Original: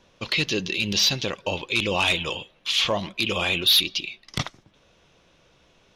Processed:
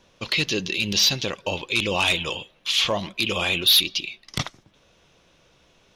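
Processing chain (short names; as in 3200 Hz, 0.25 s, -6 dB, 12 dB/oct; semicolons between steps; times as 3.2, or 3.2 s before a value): high shelf 6500 Hz +5 dB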